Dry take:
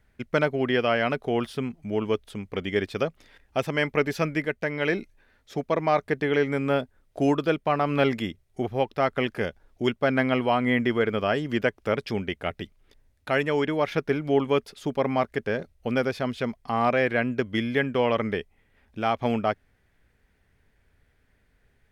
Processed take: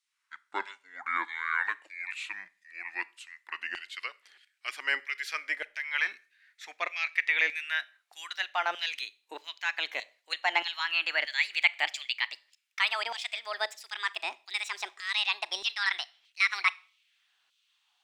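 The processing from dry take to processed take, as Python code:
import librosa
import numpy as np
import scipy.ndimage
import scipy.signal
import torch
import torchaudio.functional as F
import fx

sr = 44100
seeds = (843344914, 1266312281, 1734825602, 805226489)

y = fx.speed_glide(x, sr, from_pct=61, to_pct=182)
y = fx.low_shelf(y, sr, hz=180.0, db=-9.5)
y = fx.filter_lfo_highpass(y, sr, shape='saw_down', hz=1.6, low_hz=540.0, high_hz=3800.0, q=0.99)
y = fx.graphic_eq_10(y, sr, hz=(125, 500, 2000, 4000, 8000), db=(-12, -9, 7, 5, 6))
y = fx.rev_schroeder(y, sr, rt60_s=0.38, comb_ms=27, drr_db=19.5)
y = fx.bell_lfo(y, sr, hz=0.21, low_hz=350.0, high_hz=2400.0, db=8)
y = y * librosa.db_to_amplitude(-7.5)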